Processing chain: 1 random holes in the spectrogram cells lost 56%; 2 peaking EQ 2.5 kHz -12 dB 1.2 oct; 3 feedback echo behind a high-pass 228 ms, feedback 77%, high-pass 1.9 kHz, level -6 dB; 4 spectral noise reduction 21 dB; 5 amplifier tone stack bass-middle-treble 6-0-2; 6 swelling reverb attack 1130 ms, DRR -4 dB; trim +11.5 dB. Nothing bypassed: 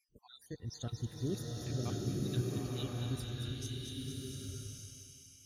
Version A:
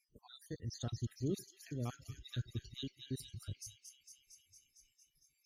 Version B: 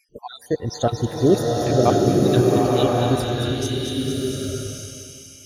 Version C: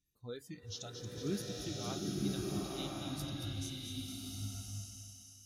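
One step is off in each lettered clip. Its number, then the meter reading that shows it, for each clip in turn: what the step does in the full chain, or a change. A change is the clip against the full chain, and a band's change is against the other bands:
6, momentary loudness spread change +5 LU; 5, 1 kHz band +11.0 dB; 1, 125 Hz band -7.0 dB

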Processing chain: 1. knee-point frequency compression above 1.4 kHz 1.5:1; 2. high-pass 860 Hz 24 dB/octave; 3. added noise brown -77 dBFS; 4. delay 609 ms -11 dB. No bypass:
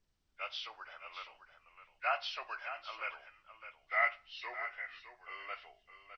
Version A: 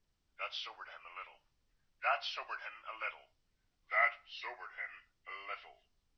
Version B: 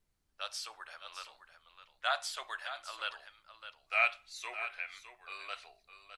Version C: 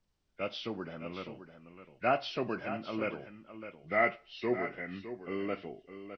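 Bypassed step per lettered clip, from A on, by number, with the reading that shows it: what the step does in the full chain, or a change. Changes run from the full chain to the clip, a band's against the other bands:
4, momentary loudness spread change -3 LU; 1, 4 kHz band +3.5 dB; 2, 500 Hz band +12.5 dB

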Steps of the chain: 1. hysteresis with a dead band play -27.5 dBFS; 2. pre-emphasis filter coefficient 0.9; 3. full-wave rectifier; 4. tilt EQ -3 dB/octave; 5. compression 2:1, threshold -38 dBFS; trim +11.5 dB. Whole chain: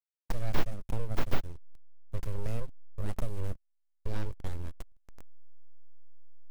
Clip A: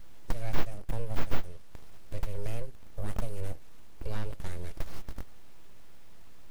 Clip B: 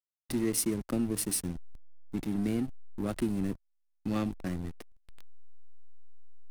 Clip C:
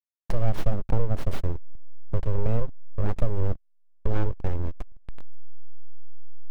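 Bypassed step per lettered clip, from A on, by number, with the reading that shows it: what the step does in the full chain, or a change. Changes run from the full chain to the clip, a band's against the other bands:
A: 1, distortion -8 dB; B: 3, crest factor change +3.5 dB; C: 2, 2 kHz band -8.0 dB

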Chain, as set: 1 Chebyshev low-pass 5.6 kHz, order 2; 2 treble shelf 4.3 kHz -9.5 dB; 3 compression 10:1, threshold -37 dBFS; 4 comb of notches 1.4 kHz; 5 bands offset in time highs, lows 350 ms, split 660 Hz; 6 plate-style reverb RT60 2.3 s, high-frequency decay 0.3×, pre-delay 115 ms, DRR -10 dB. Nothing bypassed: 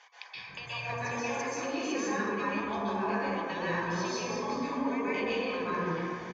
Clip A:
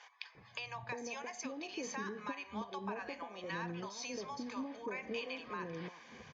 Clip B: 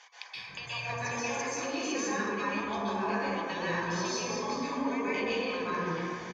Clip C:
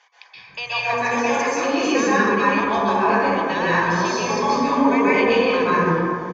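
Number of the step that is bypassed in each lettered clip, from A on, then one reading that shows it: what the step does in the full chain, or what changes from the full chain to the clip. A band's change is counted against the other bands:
6, crest factor change +4.5 dB; 2, 4 kHz band +3.0 dB; 3, 125 Hz band -3.0 dB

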